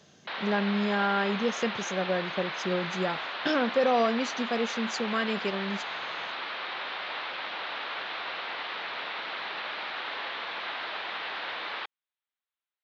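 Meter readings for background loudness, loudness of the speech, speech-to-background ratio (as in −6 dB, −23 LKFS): −34.0 LKFS, −29.5 LKFS, 4.5 dB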